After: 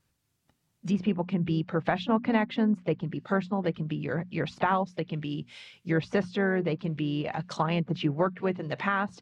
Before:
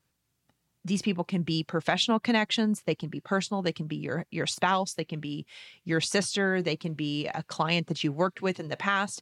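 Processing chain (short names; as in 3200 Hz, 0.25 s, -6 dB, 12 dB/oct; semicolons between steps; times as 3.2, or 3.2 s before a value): notches 60/120/180/240 Hz; treble ducked by the level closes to 1700 Hz, closed at -25.5 dBFS; low shelf 97 Hz +9.5 dB; harmoniser +3 st -15 dB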